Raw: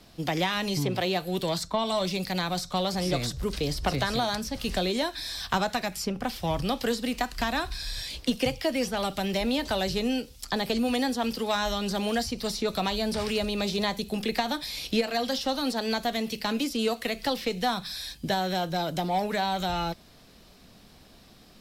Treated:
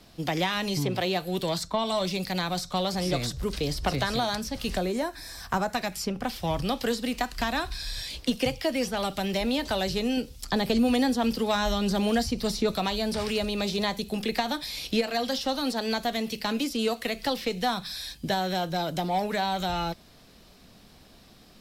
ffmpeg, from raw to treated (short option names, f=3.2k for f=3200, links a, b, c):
-filter_complex "[0:a]asettb=1/sr,asplit=3[a][b][c];[a]atrim=end=4.774[d];[b]atrim=start=4.77:end=5.75,asetpts=PTS-STARTPTS,afade=t=in:d=0.004:c=qsin,afade=t=out:st=0.976:d=0.004:c=qsin,equalizer=f=3.5k:t=o:w=0.89:g=-13.5[e];[c]atrim=start=5.746[f];[d][e]acrossfade=d=0.004:c1=hsin:c2=qsin[g];[g][f]acrossfade=d=0.004:c1=qsin:c2=hsin,asettb=1/sr,asplit=3[h][i][j];[h]atrim=end=10.174[k];[i]atrim=start=10.17:end=12.74,asetpts=PTS-STARTPTS,afade=t=in:d=0.004:c=qsin,afade=t=out:st=2.566:d=0.004:c=qsin,lowshelf=f=380:g=6[l];[j]atrim=start=12.736[m];[k][l]acrossfade=d=0.004:c1=hsin:c2=qsin[n];[n][m]acrossfade=d=0.004:c1=qsin:c2=hsin"